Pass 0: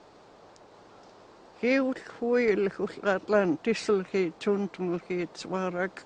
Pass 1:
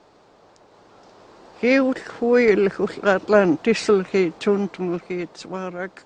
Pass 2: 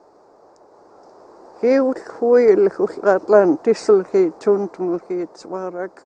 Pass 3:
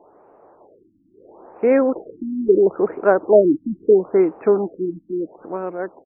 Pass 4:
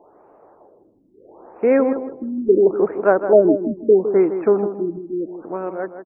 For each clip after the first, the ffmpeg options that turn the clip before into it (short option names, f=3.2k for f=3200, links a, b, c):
-af "dynaudnorm=f=220:g=13:m=11.5dB"
-af "firequalizer=gain_entry='entry(160,0);entry(350,11);entry(890,10);entry(3100,-14);entry(4900,4)':delay=0.05:min_phase=1,volume=-6.5dB"
-af "afftfilt=real='re*lt(b*sr/1024,310*pow(3000/310,0.5+0.5*sin(2*PI*0.75*pts/sr)))':imag='im*lt(b*sr/1024,310*pow(3000/310,0.5+0.5*sin(2*PI*0.75*pts/sr)))':win_size=1024:overlap=0.75"
-filter_complex "[0:a]asplit=2[a][b];[b]adelay=159,lowpass=f=1.7k:p=1,volume=-9.5dB,asplit=2[c][d];[d]adelay=159,lowpass=f=1.7k:p=1,volume=0.26,asplit=2[e][f];[f]adelay=159,lowpass=f=1.7k:p=1,volume=0.26[g];[a][c][e][g]amix=inputs=4:normalize=0"